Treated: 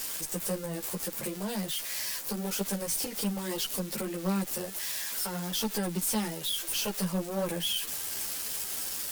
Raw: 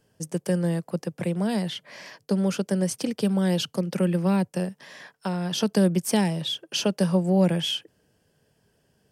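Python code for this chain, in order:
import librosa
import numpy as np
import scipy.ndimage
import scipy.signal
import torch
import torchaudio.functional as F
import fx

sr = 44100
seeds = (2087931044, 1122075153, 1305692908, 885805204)

y = x + 0.5 * 10.0 ** (-16.0 / 20.0) * np.diff(np.sign(x), prepend=np.sign(x[:1]))
y = fx.low_shelf(y, sr, hz=210.0, db=-9.0)
y = fx.tube_stage(y, sr, drive_db=23.0, bias=0.3)
y = fx.ensemble(y, sr)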